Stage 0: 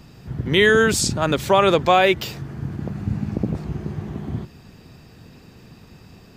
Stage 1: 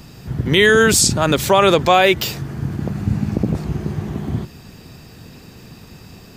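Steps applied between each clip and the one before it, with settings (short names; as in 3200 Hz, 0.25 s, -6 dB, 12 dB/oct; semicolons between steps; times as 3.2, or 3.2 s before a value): high shelf 5400 Hz +7.5 dB; in parallel at +2 dB: limiter -10.5 dBFS, peak gain reduction 7.5 dB; on the sum: gain -2 dB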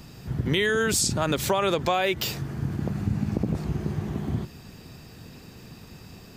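compressor, threshold -15 dBFS, peak gain reduction 7 dB; gain -5 dB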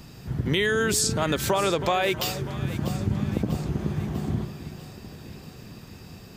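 echo with dull and thin repeats by turns 0.322 s, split 1200 Hz, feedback 75%, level -11.5 dB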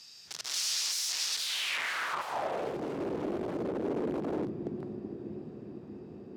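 diffused feedback echo 0.517 s, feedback 48%, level -11 dB; wrapped overs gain 25.5 dB; band-pass sweep 5300 Hz -> 350 Hz, 1.29–2.84; gain +6 dB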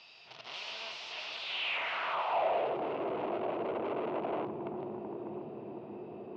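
soft clip -37.5 dBFS, distortion -7 dB; speaker cabinet 170–3300 Hz, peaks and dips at 180 Hz -8 dB, 270 Hz -8 dB, 670 Hz +9 dB, 950 Hz +5 dB, 1700 Hz -7 dB, 2700 Hz +6 dB; gain +5 dB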